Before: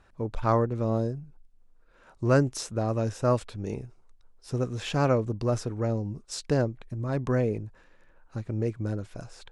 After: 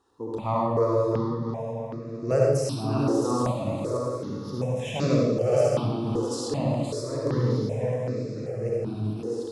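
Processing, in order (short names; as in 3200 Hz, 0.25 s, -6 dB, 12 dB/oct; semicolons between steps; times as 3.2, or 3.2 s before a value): regenerating reverse delay 0.331 s, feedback 57%, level -3.5 dB; HPF 160 Hz 12 dB/oct; bell 1500 Hz -14 dB 0.41 oct; diffused feedback echo 0.519 s, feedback 58%, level -14.5 dB; reverb RT60 1.1 s, pre-delay 60 ms, DRR -2.5 dB; step phaser 2.6 Hz 620–3100 Hz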